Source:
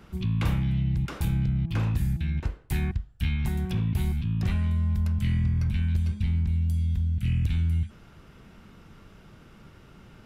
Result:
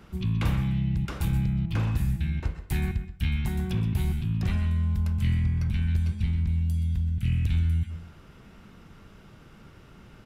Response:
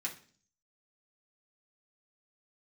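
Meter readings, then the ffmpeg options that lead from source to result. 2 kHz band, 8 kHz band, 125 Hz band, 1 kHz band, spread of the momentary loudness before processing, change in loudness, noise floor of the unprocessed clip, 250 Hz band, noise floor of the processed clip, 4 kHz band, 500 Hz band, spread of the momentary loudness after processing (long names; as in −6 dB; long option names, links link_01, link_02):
+0.5 dB, +0.5 dB, 0.0 dB, +0.5 dB, 4 LU, 0.0 dB, −52 dBFS, 0.0 dB, −51 dBFS, +0.5 dB, +0.5 dB, 4 LU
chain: -filter_complex "[0:a]aecho=1:1:132:0.188,asplit=2[link_01][link_02];[1:a]atrim=start_sample=2205,adelay=121[link_03];[link_02][link_03]afir=irnorm=-1:irlink=0,volume=-13dB[link_04];[link_01][link_04]amix=inputs=2:normalize=0"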